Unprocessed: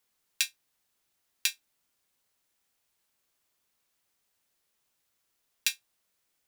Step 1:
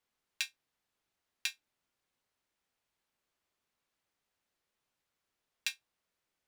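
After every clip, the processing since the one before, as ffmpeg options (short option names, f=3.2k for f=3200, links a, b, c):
-af "lowpass=f=2.9k:p=1,volume=-2.5dB"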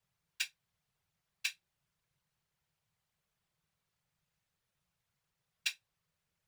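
-af "afftfilt=real='hypot(re,im)*cos(2*PI*random(0))':imag='hypot(re,im)*sin(2*PI*random(1))':win_size=512:overlap=0.75,lowshelf=f=200:t=q:w=3:g=8.5,volume=5.5dB"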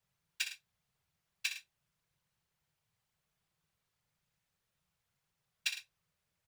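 -af "aecho=1:1:61|107:0.355|0.211"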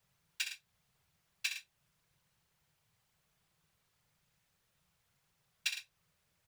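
-af "alimiter=level_in=3.5dB:limit=-24dB:level=0:latency=1:release=352,volume=-3.5dB,volume=6.5dB"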